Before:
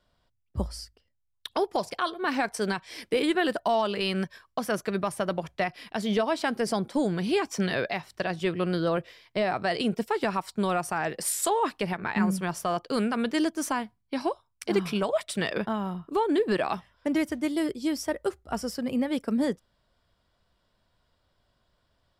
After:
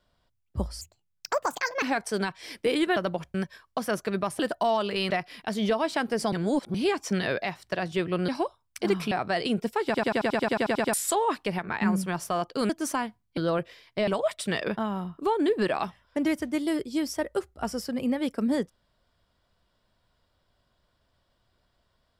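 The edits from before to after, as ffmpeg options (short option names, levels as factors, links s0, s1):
-filter_complex "[0:a]asplit=26[s0][s1][s2][s3][s4][s5][s6][s7][s8][s9][s10][s11][s12][s13][s14][s15][s16][s17][s18][s19][s20][s21][s22][s23][s24][s25];[s0]atrim=end=0.814[s26];[s1]atrim=start=0.81:end=2.3,asetpts=PTS-STARTPTS,asetrate=64827,aresample=44100[s27];[s2]atrim=start=2.296:end=3.442[s28];[s3]atrim=start=5.198:end=5.582[s29];[s4]atrim=start=4.148:end=5.202[s30];[s5]atrim=start=3.438:end=4.152[s31];[s6]atrim=start=5.578:end=6.802[s32];[s7]atrim=start=6.798:end=7.222,asetpts=PTS-STARTPTS,areverse[s33];[s8]atrim=start=7.218:end=8.762[s34];[s9]atrim=start=14.138:end=14.972[s35];[s10]atrim=start=9.458:end=10.292[s36];[s11]atrim=start=10.198:end=10.292[s37];[s12]atrim=start=10.198:end=10.292[s38];[s13]atrim=start=10.198:end=10.292[s39];[s14]atrim=start=10.198:end=10.292[s40];[s15]atrim=start=10.198:end=10.292[s41];[s16]atrim=start=10.198:end=10.292[s42];[s17]atrim=start=10.198:end=10.292[s43];[s18]atrim=start=10.198:end=10.292[s44];[s19]atrim=start=10.198:end=10.292[s45];[s20]atrim=start=10.198:end=10.292[s46];[s21]atrim=start=10.198:end=10.292[s47];[s22]atrim=start=11.278:end=13.042[s48];[s23]atrim=start=13.458:end=14.142[s49];[s24]atrim=start=8.758:end=9.462[s50];[s25]atrim=start=14.968[s51];[s26][s27]acrossfade=d=0.004:c1=hsin:c2=hsin[s52];[s52][s28]acrossfade=d=0.004:c1=hsin:c2=hsin[s53];[s53][s29]acrossfade=d=0.004:c1=hsin:c2=hsin[s54];[s54][s30]acrossfade=d=0.004:c1=hsin:c2=hsin[s55];[s55][s31]acrossfade=d=0.004:c1=hsin:c2=hsin[s56];[s56][s32]acrossfade=d=0.004:c1=hsin:c2=hsin[s57];[s57][s33]acrossfade=d=0.004:c1=hsin:c2=hsin[s58];[s58][s34]acrossfade=d=0.004:c1=hsin:c2=hsin[s59];[s59][s35]acrossfade=d=0.004:c1=hsin:c2=hsin[s60];[s60][s36]acrossfade=d=0.004:c1=hsin:c2=hsin[s61];[s61][s37]acrossfade=d=0.004:c1=hsin:c2=hsin[s62];[s62][s38]acrossfade=d=0.004:c1=hsin:c2=hsin[s63];[s63][s39]acrossfade=d=0.004:c1=hsin:c2=hsin[s64];[s64][s40]acrossfade=d=0.004:c1=hsin:c2=hsin[s65];[s65][s41]acrossfade=d=0.004:c1=hsin:c2=hsin[s66];[s66][s42]acrossfade=d=0.004:c1=hsin:c2=hsin[s67];[s67][s43]acrossfade=d=0.004:c1=hsin:c2=hsin[s68];[s68][s44]acrossfade=d=0.004:c1=hsin:c2=hsin[s69];[s69][s45]acrossfade=d=0.004:c1=hsin:c2=hsin[s70];[s70][s46]acrossfade=d=0.004:c1=hsin:c2=hsin[s71];[s71][s47]acrossfade=d=0.004:c1=hsin:c2=hsin[s72];[s72][s48]acrossfade=d=0.004:c1=hsin:c2=hsin[s73];[s73][s49]acrossfade=d=0.004:c1=hsin:c2=hsin[s74];[s74][s50]acrossfade=d=0.004:c1=hsin:c2=hsin[s75];[s75][s51]acrossfade=d=0.004:c1=hsin:c2=hsin"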